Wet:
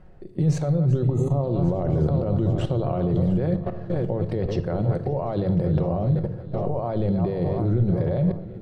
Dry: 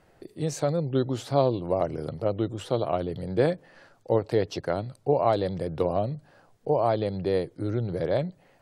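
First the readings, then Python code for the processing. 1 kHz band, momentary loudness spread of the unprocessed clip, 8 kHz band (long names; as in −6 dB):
−3.5 dB, 7 LU, can't be measured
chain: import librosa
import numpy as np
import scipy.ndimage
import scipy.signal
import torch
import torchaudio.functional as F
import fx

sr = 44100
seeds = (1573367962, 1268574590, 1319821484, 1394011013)

p1 = fx.reverse_delay_fb(x, sr, ms=371, feedback_pct=70, wet_db=-13.5)
p2 = fx.peak_eq(p1, sr, hz=280.0, db=-3.0, octaves=0.29)
p3 = fx.over_compress(p2, sr, threshold_db=-30.0, ratio=-0.5)
p4 = p2 + F.gain(torch.from_numpy(p3), 0.5).numpy()
p5 = fx.spec_repair(p4, sr, seeds[0], start_s=1.12, length_s=0.29, low_hz=1300.0, high_hz=6100.0, source='before')
p6 = fx.level_steps(p5, sr, step_db=15)
p7 = fx.riaa(p6, sr, side='playback')
p8 = fx.hum_notches(p7, sr, base_hz=50, count=2)
y = fx.room_shoebox(p8, sr, seeds[1], volume_m3=2100.0, walls='furnished', distance_m=1.0)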